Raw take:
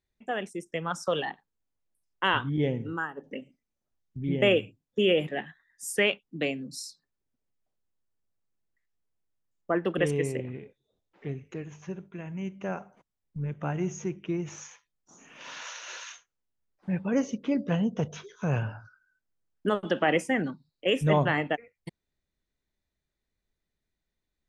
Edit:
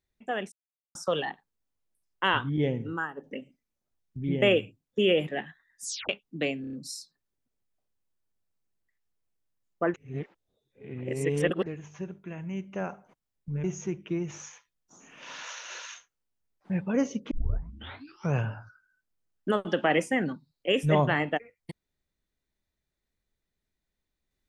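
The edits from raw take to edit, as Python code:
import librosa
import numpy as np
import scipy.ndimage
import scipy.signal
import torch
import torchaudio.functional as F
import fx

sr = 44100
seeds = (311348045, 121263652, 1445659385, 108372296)

y = fx.edit(x, sr, fx.silence(start_s=0.52, length_s=0.43),
    fx.tape_stop(start_s=5.84, length_s=0.25),
    fx.stutter(start_s=6.61, slice_s=0.03, count=5),
    fx.reverse_span(start_s=9.82, length_s=1.72),
    fx.cut(start_s=13.52, length_s=0.3),
    fx.tape_start(start_s=17.49, length_s=1.03), tone=tone)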